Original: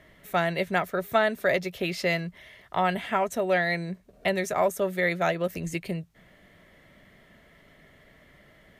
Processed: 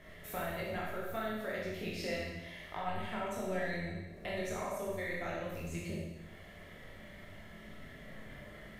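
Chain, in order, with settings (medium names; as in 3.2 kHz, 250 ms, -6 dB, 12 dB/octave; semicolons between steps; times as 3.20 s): octave divider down 1 oct, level -3 dB; compression 3:1, threshold -44 dBFS, peak gain reduction 19.5 dB; chorus voices 6, 1 Hz, delay 21 ms, depth 3 ms; Schroeder reverb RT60 1.1 s, combs from 29 ms, DRR -2.5 dB; trim +2 dB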